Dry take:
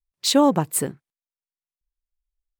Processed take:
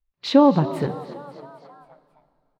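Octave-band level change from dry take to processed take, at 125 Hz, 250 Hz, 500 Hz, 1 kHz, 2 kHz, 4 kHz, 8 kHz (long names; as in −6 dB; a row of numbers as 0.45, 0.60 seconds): +5.0 dB, +3.0 dB, +2.5 dB, +1.5 dB, −1.0 dB, −6.5 dB, below −20 dB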